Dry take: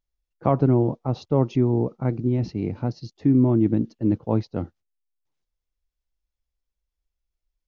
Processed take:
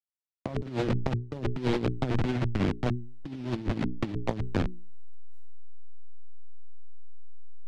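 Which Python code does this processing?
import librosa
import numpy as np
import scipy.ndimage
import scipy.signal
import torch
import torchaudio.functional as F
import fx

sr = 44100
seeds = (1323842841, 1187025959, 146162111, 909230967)

y = fx.delta_hold(x, sr, step_db=-22.0)
y = scipy.signal.sosfilt(scipy.signal.butter(2, 3500.0, 'lowpass', fs=sr, output='sos'), y)
y = fx.peak_eq(y, sr, hz=1100.0, db=-2.0, octaves=0.77)
y = fx.hum_notches(y, sr, base_hz=60, count=7)
y = fx.over_compress(y, sr, threshold_db=-27.0, ratio=-0.5)
y = fx.vibrato(y, sr, rate_hz=7.5, depth_cents=43.0)
y = fx.band_squash(y, sr, depth_pct=40)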